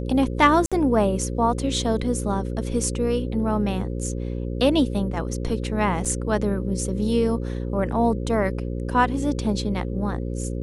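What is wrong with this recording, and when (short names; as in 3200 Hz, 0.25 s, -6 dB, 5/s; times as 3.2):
buzz 60 Hz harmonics 9 -28 dBFS
0.66–0.72 gap 56 ms
6.05–6.06 gap 5.6 ms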